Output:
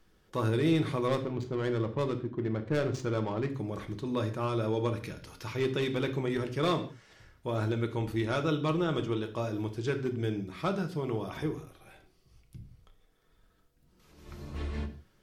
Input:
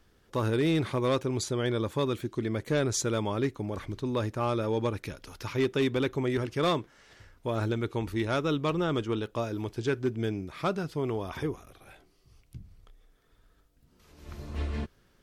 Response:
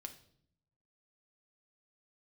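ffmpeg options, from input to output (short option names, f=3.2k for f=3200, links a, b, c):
-filter_complex "[0:a]asettb=1/sr,asplit=3[a][b][c];[a]atrim=end=1.084[d];[b]atrim=start=1.08:end=3.5,asetpts=PTS-STARTPTS,afade=t=in:d=0.004:c=qsin,afade=t=out:st=2.416:d=0.004:c=qsin,adynamicsmooth=sensitivity=3.5:basefreq=910[e];[c]atrim=start=3.496[f];[d][e]acrossfade=d=0.004:c1=hsin:c2=qsin[g];[g][f]acrossfade=d=0.004:c1=qsin:c2=hsin[h];[1:a]atrim=start_sample=2205,afade=t=out:st=0.23:d=0.01,atrim=end_sample=10584[i];[h][i]afir=irnorm=-1:irlink=0,volume=2.5dB"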